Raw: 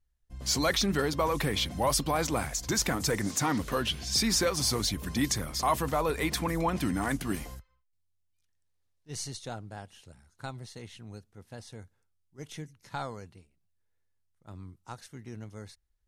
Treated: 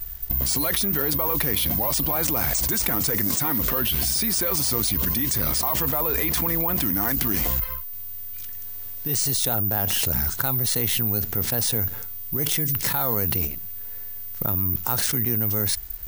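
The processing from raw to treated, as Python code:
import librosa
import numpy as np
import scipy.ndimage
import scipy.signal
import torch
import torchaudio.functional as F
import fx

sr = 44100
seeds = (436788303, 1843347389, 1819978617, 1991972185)

y = (np.kron(x[::3], np.eye(3)[0]) * 3)[:len(x)]
y = fx.env_flatten(y, sr, amount_pct=100)
y = y * 10.0 ** (-4.5 / 20.0)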